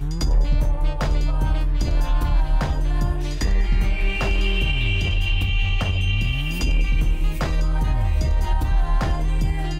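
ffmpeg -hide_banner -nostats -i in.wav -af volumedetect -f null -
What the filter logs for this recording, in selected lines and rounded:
mean_volume: -18.8 dB
max_volume: -10.1 dB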